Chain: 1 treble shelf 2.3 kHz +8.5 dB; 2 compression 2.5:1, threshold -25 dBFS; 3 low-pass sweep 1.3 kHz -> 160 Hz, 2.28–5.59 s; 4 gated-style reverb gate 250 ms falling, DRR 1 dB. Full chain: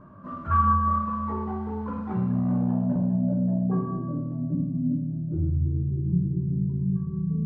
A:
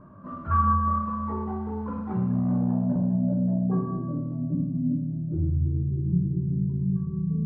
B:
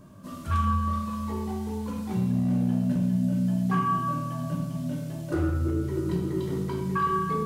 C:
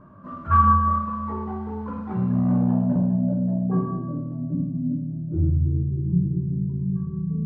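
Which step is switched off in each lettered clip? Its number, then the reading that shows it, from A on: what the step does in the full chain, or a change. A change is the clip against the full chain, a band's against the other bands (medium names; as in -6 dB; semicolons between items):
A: 1, momentary loudness spread change -1 LU; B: 3, loudness change -1.5 LU; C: 2, 1 kHz band +1.5 dB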